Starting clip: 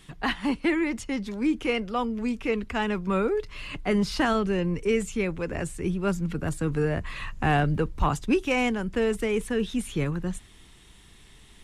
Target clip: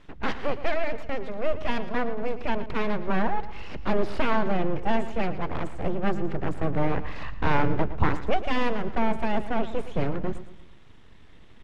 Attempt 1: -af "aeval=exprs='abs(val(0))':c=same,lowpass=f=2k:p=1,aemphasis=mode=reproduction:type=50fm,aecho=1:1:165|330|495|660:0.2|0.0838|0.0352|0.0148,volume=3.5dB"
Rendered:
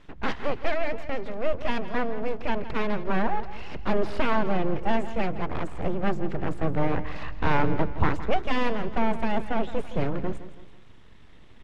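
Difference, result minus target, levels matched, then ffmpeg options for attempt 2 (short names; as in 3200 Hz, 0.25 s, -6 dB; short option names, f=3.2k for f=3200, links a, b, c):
echo 52 ms late
-af "aeval=exprs='abs(val(0))':c=same,lowpass=f=2k:p=1,aemphasis=mode=reproduction:type=50fm,aecho=1:1:113|226|339|452:0.2|0.0838|0.0352|0.0148,volume=3.5dB"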